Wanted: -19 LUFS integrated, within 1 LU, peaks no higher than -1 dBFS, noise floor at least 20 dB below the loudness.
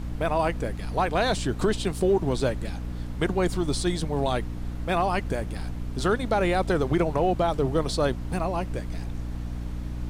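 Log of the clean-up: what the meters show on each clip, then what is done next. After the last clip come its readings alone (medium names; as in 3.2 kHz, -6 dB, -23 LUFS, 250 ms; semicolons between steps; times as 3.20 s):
hum 60 Hz; highest harmonic 300 Hz; hum level -31 dBFS; noise floor -34 dBFS; noise floor target -47 dBFS; loudness -27.0 LUFS; peak level -12.0 dBFS; loudness target -19.0 LUFS
-> de-hum 60 Hz, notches 5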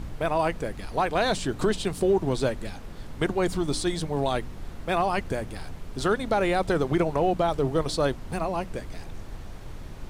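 hum not found; noise floor -40 dBFS; noise floor target -47 dBFS
-> noise print and reduce 7 dB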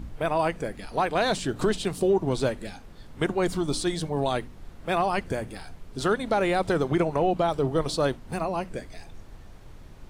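noise floor -47 dBFS; loudness -26.5 LUFS; peak level -13.0 dBFS; loudness target -19.0 LUFS
-> trim +7.5 dB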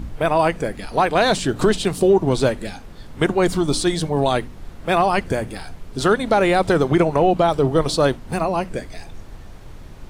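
loudness -19.0 LUFS; peak level -6.0 dBFS; noise floor -39 dBFS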